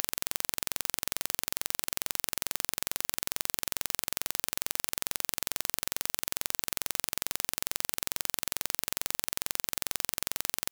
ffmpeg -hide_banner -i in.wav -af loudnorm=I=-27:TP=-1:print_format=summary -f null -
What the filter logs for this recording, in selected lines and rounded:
Input Integrated:    -31.7 LUFS
Input True Peak:      -1.6 dBTP
Input LRA:             0.1 LU
Input Threshold:     -41.7 LUFS